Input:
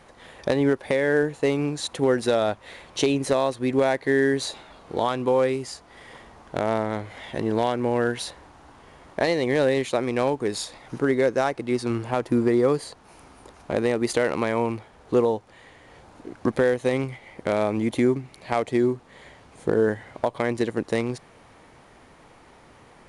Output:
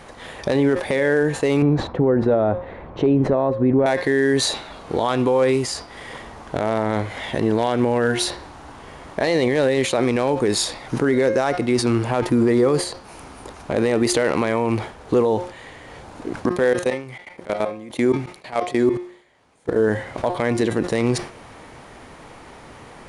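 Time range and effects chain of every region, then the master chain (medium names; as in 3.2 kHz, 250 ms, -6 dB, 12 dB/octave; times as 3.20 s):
1.62–3.86 s: low-pass 1.1 kHz + bass shelf 270 Hz +6 dB
16.46–19.80 s: bass shelf 150 Hz -9 dB + level held to a coarse grid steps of 23 dB
whole clip: de-hum 178.5 Hz, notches 33; loudness maximiser +18 dB; decay stretcher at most 120 dB/s; trim -8.5 dB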